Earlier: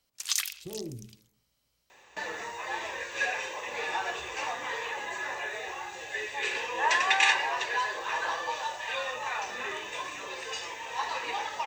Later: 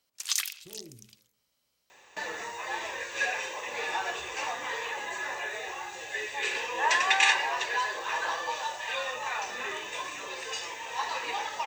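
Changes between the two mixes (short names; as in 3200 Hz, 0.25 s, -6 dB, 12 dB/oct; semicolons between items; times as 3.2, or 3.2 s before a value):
speech -9.5 dB; second sound: add high shelf 6400 Hz +5 dB; master: add low shelf 120 Hz -3.5 dB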